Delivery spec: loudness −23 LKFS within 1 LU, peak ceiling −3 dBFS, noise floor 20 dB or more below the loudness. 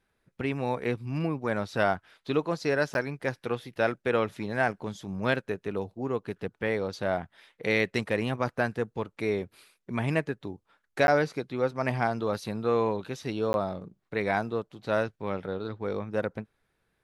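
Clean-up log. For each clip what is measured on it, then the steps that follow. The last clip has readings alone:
number of dropouts 3; longest dropout 11 ms; integrated loudness −30.0 LKFS; sample peak −8.5 dBFS; target loudness −23.0 LKFS
→ repair the gap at 0:02.94/0:11.07/0:13.53, 11 ms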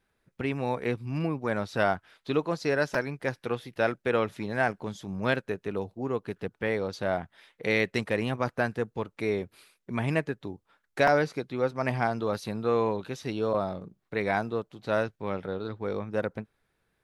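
number of dropouts 0; integrated loudness −30.0 LKFS; sample peak −8.5 dBFS; target loudness −23.0 LKFS
→ level +7 dB
brickwall limiter −3 dBFS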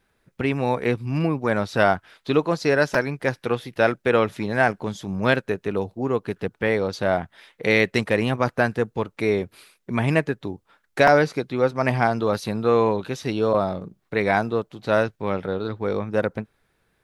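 integrated loudness −23.0 LKFS; sample peak −3.0 dBFS; background noise floor −70 dBFS

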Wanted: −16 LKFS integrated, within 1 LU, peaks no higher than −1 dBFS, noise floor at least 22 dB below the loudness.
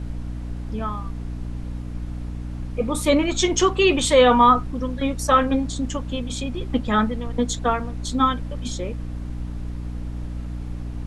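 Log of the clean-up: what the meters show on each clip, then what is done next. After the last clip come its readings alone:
mains hum 60 Hz; hum harmonics up to 300 Hz; level of the hum −28 dBFS; background noise floor −31 dBFS; target noise floor −45 dBFS; integrated loudness −22.5 LKFS; sample peak −3.5 dBFS; target loudness −16.0 LKFS
→ mains-hum notches 60/120/180/240/300 Hz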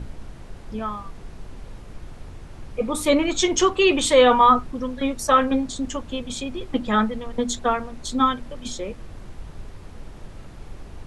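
mains hum none found; background noise floor −41 dBFS; target noise floor −44 dBFS
→ noise reduction from a noise print 6 dB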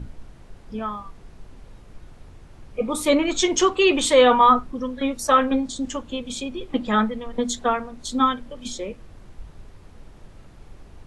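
background noise floor −47 dBFS; integrated loudness −21.5 LKFS; sample peak −4.0 dBFS; target loudness −16.0 LKFS
→ level +5.5 dB
brickwall limiter −1 dBFS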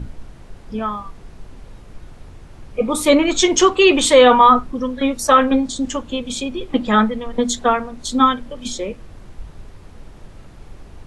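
integrated loudness −16.5 LKFS; sample peak −1.0 dBFS; background noise floor −42 dBFS

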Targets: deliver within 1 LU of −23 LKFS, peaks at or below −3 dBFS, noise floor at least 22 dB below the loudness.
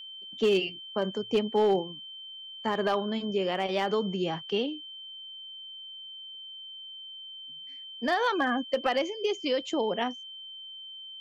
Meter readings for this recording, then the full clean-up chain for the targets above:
share of clipped samples 0.3%; peaks flattened at −18.0 dBFS; interfering tone 3,100 Hz; level of the tone −41 dBFS; integrated loudness −29.5 LKFS; sample peak −18.0 dBFS; target loudness −23.0 LKFS
→ clipped peaks rebuilt −18 dBFS
notch filter 3,100 Hz, Q 30
level +6.5 dB

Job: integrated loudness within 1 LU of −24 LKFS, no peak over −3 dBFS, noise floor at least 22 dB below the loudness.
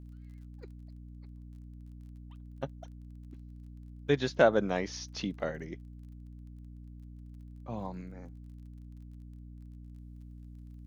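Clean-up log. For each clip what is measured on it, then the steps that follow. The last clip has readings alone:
crackle rate 24 per second; mains hum 60 Hz; hum harmonics up to 300 Hz; level of the hum −45 dBFS; integrated loudness −32.5 LKFS; sample peak −9.5 dBFS; target loudness −24.0 LKFS
→ click removal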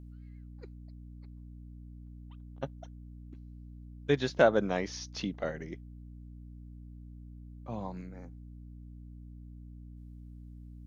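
crackle rate 0 per second; mains hum 60 Hz; hum harmonics up to 300 Hz; level of the hum −45 dBFS
→ mains-hum notches 60/120/180/240/300 Hz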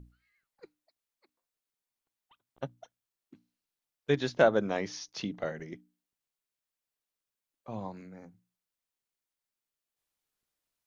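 mains hum none found; integrated loudness −32.0 LKFS; sample peak −10.0 dBFS; target loudness −24.0 LKFS
→ level +8 dB
brickwall limiter −3 dBFS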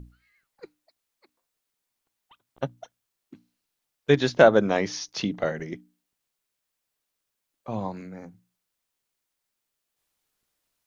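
integrated loudness −24.5 LKFS; sample peak −3.0 dBFS; background noise floor −82 dBFS

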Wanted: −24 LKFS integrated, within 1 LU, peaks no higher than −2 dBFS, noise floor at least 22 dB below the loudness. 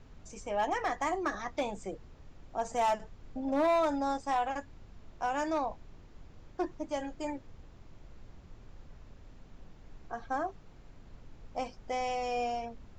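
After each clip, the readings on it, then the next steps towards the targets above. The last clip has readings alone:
share of clipped samples 0.6%; peaks flattened at −23.0 dBFS; background noise floor −55 dBFS; target noise floor −56 dBFS; integrated loudness −34.0 LKFS; sample peak −23.0 dBFS; target loudness −24.0 LKFS
→ clipped peaks rebuilt −23 dBFS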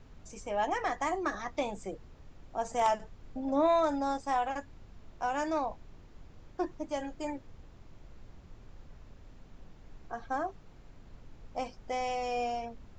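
share of clipped samples 0.0%; background noise floor −55 dBFS; target noise floor −56 dBFS
→ noise reduction from a noise print 6 dB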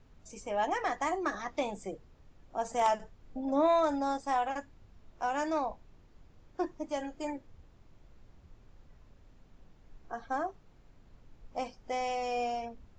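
background noise floor −61 dBFS; integrated loudness −33.5 LKFS; sample peak −14.0 dBFS; target loudness −24.0 LKFS
→ level +9.5 dB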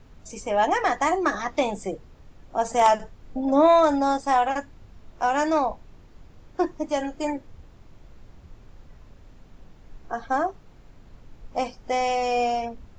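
integrated loudness −24.0 LKFS; sample peak −4.5 dBFS; background noise floor −51 dBFS

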